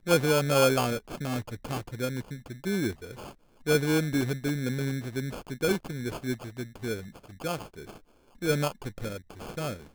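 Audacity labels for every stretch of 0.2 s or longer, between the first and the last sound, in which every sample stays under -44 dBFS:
3.310000	3.660000	silence
7.980000	8.420000	silence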